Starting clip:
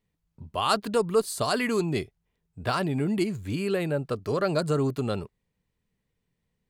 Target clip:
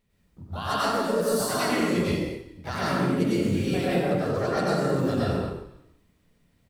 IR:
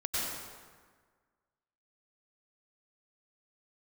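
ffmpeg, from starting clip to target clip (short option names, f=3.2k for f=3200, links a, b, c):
-filter_complex "[0:a]areverse,acompressor=threshold=-36dB:ratio=5,areverse,asplit=3[a][b][c];[b]asetrate=55563,aresample=44100,atempo=0.793701,volume=-9dB[d];[c]asetrate=58866,aresample=44100,atempo=0.749154,volume=-7dB[e];[a][d][e]amix=inputs=3:normalize=0,asplit=4[f][g][h][i];[g]adelay=152,afreqshift=-31,volume=-15.5dB[j];[h]adelay=304,afreqshift=-62,volume=-23.7dB[k];[i]adelay=456,afreqshift=-93,volume=-31.9dB[l];[f][j][k][l]amix=inputs=4:normalize=0[m];[1:a]atrim=start_sample=2205,afade=t=out:st=0.44:d=0.01,atrim=end_sample=19845[n];[m][n]afir=irnorm=-1:irlink=0,volume=5.5dB"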